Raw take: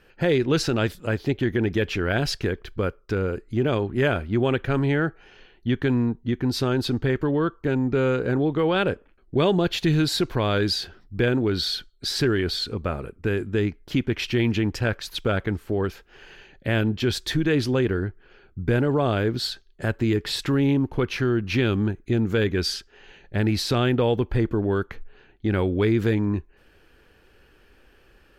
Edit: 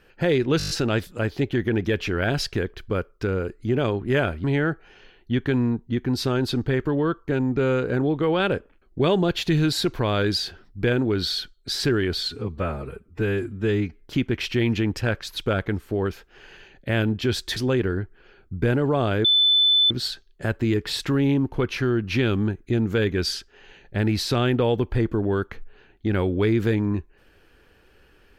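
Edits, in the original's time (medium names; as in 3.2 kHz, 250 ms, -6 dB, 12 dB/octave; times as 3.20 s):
0.58 s: stutter 0.02 s, 7 plays
4.32–4.80 s: delete
12.64–13.79 s: stretch 1.5×
17.35–17.62 s: delete
19.30 s: add tone 3.51 kHz -14.5 dBFS 0.66 s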